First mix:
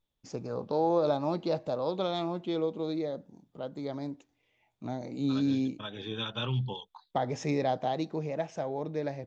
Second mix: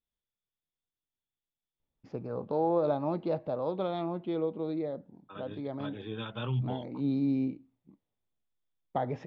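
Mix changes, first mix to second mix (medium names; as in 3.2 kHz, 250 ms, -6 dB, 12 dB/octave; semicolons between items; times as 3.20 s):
first voice: entry +1.80 s; master: add distance through air 390 m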